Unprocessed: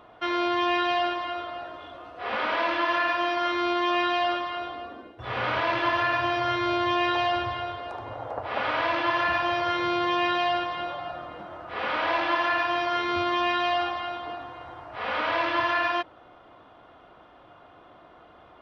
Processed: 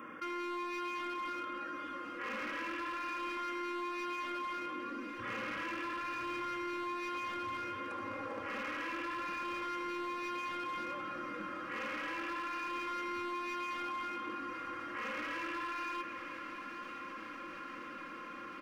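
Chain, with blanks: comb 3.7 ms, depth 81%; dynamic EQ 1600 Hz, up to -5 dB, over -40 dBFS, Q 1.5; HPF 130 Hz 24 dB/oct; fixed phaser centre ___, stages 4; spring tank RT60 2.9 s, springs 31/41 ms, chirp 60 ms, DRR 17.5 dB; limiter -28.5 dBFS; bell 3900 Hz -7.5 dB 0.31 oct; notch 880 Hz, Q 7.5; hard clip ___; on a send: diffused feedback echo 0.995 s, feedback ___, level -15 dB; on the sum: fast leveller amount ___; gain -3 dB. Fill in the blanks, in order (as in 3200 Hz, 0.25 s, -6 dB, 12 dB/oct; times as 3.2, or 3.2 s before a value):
1700 Hz, -33.5 dBFS, 75%, 50%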